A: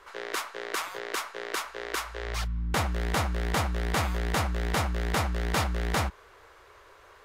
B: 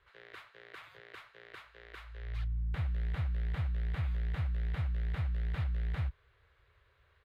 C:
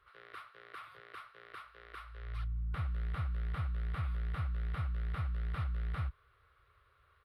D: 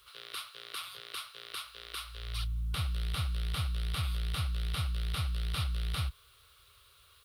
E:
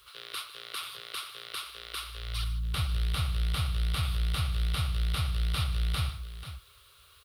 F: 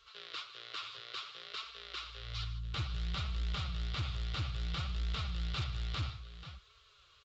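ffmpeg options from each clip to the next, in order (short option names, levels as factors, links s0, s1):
-filter_complex "[0:a]firequalizer=gain_entry='entry(140,0);entry(210,-19);entry(510,-17);entry(900,-21);entry(1700,-12);entry(3900,-12);entry(5600,-26);entry(14000,-23)':delay=0.05:min_phase=1,acrossover=split=2700[s0][s1];[s1]acompressor=threshold=0.00158:ratio=4:attack=1:release=60[s2];[s0][s2]amix=inputs=2:normalize=0,highpass=40,volume=0.794"
-af "superequalizer=10b=2.82:15b=0.398:16b=2,volume=0.75"
-af "aexciter=amount=11.9:drive=2.5:freq=2800,volume=1.33"
-af "aecho=1:1:152|487:0.168|0.266,volume=1.41"
-af "flanger=delay=4.4:depth=5:regen=34:speed=0.59:shape=sinusoidal,asoftclip=type=hard:threshold=0.0316,aresample=16000,aresample=44100,volume=0.891"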